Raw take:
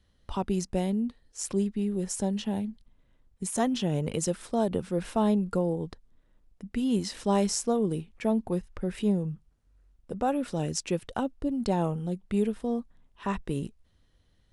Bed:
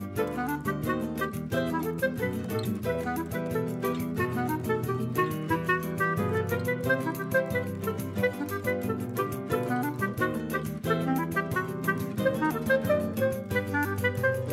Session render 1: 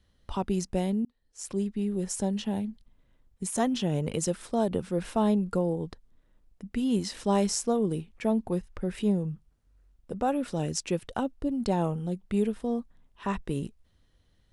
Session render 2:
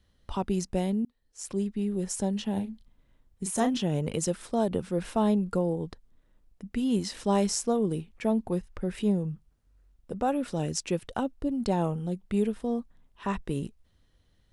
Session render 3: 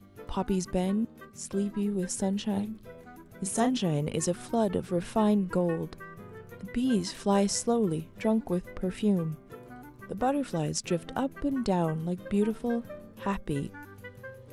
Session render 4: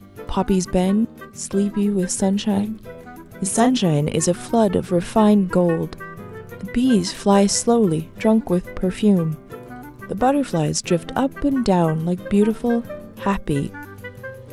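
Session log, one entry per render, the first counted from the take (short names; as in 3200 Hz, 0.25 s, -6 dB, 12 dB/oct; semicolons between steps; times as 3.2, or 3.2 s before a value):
1.05–2.06 fade in equal-power
2.53–3.77 doubler 36 ms -8.5 dB
add bed -18 dB
gain +10 dB; limiter -3 dBFS, peak gain reduction 1.5 dB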